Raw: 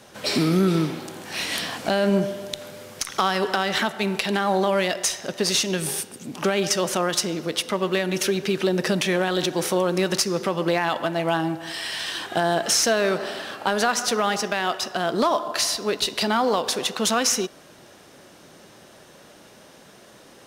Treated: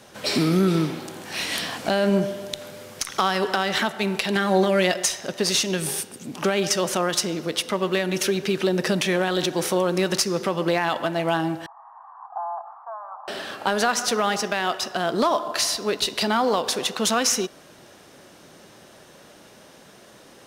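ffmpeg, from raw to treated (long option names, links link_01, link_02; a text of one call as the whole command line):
ffmpeg -i in.wav -filter_complex "[0:a]asettb=1/sr,asplit=3[link_01][link_02][link_03];[link_01]atrim=end=4.354[link_04];[link_02]atrim=start=4.35:end=5.06,asetpts=PTS-STARTPTS,afade=type=in:duration=0.004:curve=qsin,afade=type=out:start_time=0.706:duration=0.004:curve=qsin,aecho=1:1:5.6:0.65,atrim=end_sample=31311[link_05];[link_03]atrim=start=5.056[link_06];[link_04][link_05]acrossfade=duration=0.004:curve1=hsin:curve2=qsin[link_07];[link_07][link_06]acrossfade=duration=0.004:curve1=qsin:curve2=hsin,asettb=1/sr,asplit=3[link_08][link_09][link_10];[link_08]atrim=end=11.664[link_11];[link_09]atrim=start=11.66:end=13.28,asetpts=PTS-STARTPTS,afade=type=in:duration=0.004:curve=qsin,afade=type=out:start_time=1.616:duration=0.004:curve=qsin,asuperpass=centerf=950:order=8:qfactor=2.1[link_12];[link_10]atrim=start=13.276[link_13];[link_11][link_12]acrossfade=duration=0.004:curve1=hsin:curve2=qsin[link_14];[link_14][link_13]acrossfade=duration=0.004:curve1=qsin:curve2=hsin" out.wav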